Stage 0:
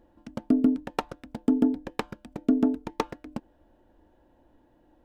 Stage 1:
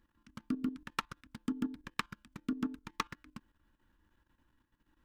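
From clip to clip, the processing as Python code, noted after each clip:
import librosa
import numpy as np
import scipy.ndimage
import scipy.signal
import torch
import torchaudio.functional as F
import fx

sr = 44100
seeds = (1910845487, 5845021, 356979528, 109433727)

y = fx.curve_eq(x, sr, hz=(190.0, 460.0, 710.0, 1100.0), db=(0, -13, -18, 6))
y = fx.level_steps(y, sr, step_db=13)
y = y * librosa.db_to_amplitude(-5.5)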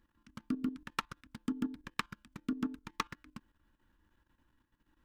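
y = x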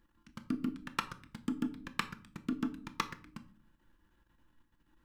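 y = fx.room_shoebox(x, sr, seeds[0], volume_m3=490.0, walls='furnished', distance_m=0.78)
y = y * librosa.db_to_amplitude(1.0)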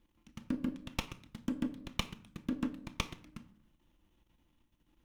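y = fx.lower_of_two(x, sr, delay_ms=0.31)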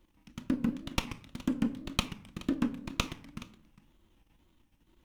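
y = x + 10.0 ** (-18.5 / 20.0) * np.pad(x, (int(413 * sr / 1000.0), 0))[:len(x)]
y = fx.wow_flutter(y, sr, seeds[1], rate_hz=2.1, depth_cents=140.0)
y = y * librosa.db_to_amplitude(5.0)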